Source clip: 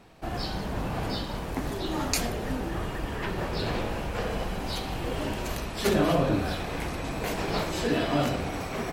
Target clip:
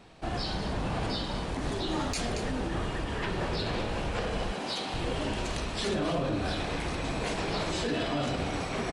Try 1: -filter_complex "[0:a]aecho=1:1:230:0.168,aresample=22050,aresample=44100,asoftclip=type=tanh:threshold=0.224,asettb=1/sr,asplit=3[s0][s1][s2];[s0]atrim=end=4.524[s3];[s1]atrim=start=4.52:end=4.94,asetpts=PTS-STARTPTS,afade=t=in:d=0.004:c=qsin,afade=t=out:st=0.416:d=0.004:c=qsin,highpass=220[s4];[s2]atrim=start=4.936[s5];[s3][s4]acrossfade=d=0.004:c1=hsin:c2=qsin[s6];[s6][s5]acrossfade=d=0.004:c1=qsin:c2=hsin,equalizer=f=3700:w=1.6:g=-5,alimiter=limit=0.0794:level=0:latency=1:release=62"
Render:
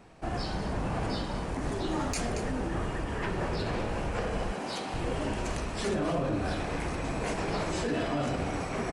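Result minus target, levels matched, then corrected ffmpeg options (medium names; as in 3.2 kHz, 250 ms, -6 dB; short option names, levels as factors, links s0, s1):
4 kHz band -5.5 dB
-filter_complex "[0:a]aecho=1:1:230:0.168,aresample=22050,aresample=44100,asoftclip=type=tanh:threshold=0.224,asettb=1/sr,asplit=3[s0][s1][s2];[s0]atrim=end=4.524[s3];[s1]atrim=start=4.52:end=4.94,asetpts=PTS-STARTPTS,afade=t=in:d=0.004:c=qsin,afade=t=out:st=0.416:d=0.004:c=qsin,highpass=220[s4];[s2]atrim=start=4.936[s5];[s3][s4]acrossfade=d=0.004:c1=hsin:c2=qsin[s6];[s6][s5]acrossfade=d=0.004:c1=qsin:c2=hsin,equalizer=f=3700:w=1.6:g=3.5,alimiter=limit=0.0794:level=0:latency=1:release=62"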